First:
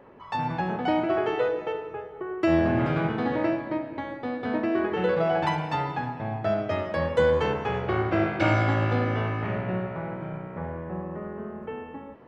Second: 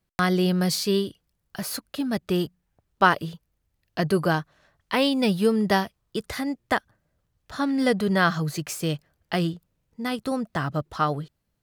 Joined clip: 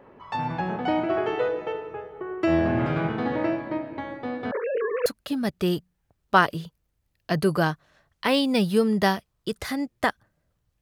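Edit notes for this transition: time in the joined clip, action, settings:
first
0:04.51–0:05.06: three sine waves on the formant tracks
0:05.06: continue with second from 0:01.74

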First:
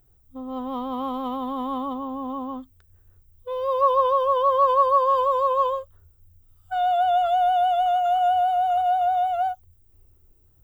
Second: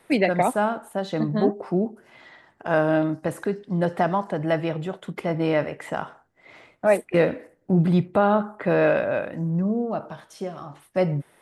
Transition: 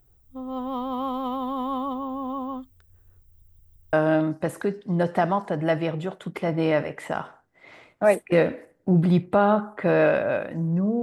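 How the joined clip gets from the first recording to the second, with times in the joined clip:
first
0:03.25: stutter in place 0.17 s, 4 plays
0:03.93: continue with second from 0:02.75

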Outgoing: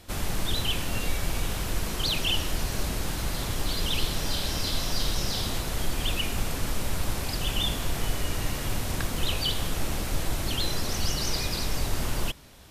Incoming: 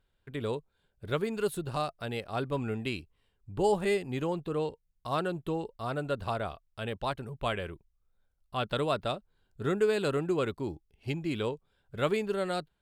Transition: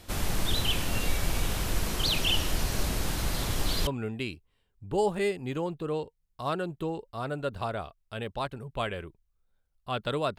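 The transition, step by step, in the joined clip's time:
outgoing
0:03.87: continue with incoming from 0:02.53

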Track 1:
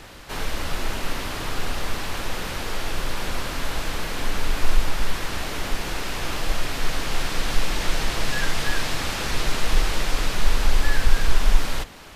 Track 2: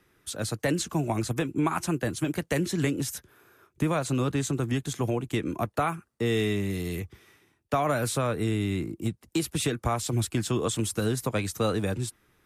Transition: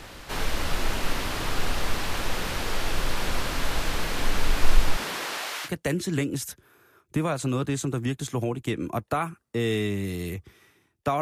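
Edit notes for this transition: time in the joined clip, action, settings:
track 1
0:04.96–0:05.70: high-pass filter 150 Hz → 1,300 Hz
0:05.67: continue with track 2 from 0:02.33, crossfade 0.06 s

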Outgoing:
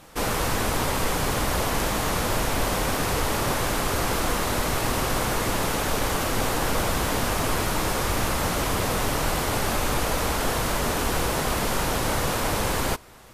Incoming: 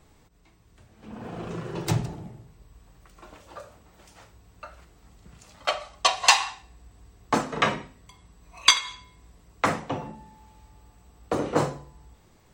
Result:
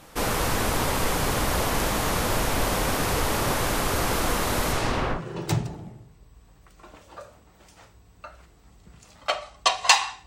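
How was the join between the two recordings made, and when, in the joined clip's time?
outgoing
0:04.72–0:05.22: low-pass filter 11,000 Hz → 1,300 Hz
0:05.17: continue with incoming from 0:01.56, crossfade 0.10 s

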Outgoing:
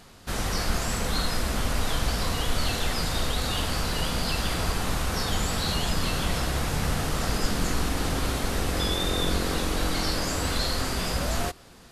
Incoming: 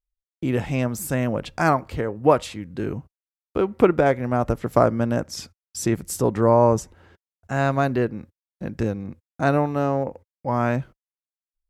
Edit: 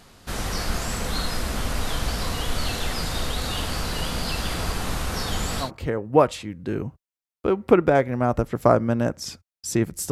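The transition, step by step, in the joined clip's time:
outgoing
0:04.42–0:05.71: gate on every frequency bin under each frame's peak −50 dB strong
0:05.65: continue with incoming from 0:01.76, crossfade 0.12 s

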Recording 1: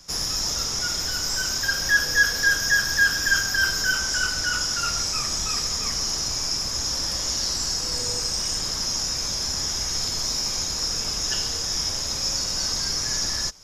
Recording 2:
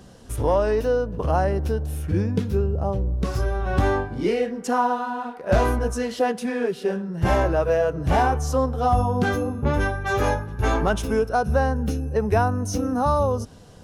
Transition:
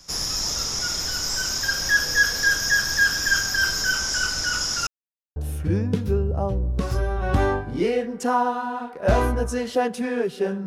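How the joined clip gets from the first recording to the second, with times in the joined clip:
recording 1
0:04.87–0:05.36: silence
0:05.36: continue with recording 2 from 0:01.80

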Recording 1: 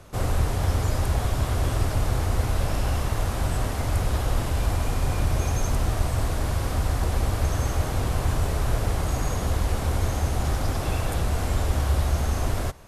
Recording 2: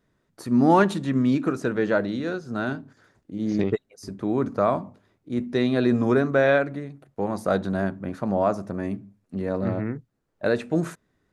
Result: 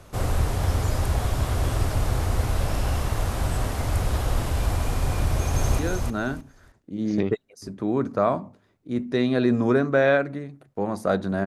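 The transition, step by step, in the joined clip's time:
recording 1
0:05.22–0:05.79: delay throw 310 ms, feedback 20%, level −3.5 dB
0:05.79: continue with recording 2 from 0:02.20

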